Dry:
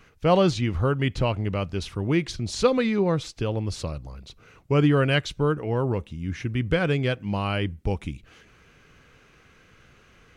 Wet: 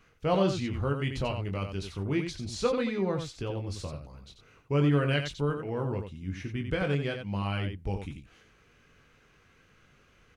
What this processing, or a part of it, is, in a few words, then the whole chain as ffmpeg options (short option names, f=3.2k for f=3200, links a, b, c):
slapback doubling: -filter_complex "[0:a]asplit=3[a][b][c];[b]adelay=21,volume=-6dB[d];[c]adelay=90,volume=-7dB[e];[a][d][e]amix=inputs=3:normalize=0,asettb=1/sr,asplit=3[f][g][h];[f]atrim=end=0.954[i];[g]atrim=start=0.95:end=1.81,asetpts=PTS-STARTPTS,afade=t=in:d=0.004:c=qsin,afade=t=out:st=0.856:d=0.004:c=qsin,highshelf=f=5.5k:g=6[j];[h]atrim=start=1.806[k];[i][j]acrossfade=d=0.004:c1=hsin:c2=qsin[l];[l][k]acrossfade=d=0.004:c1=qsin:c2=hsin,volume=-8dB"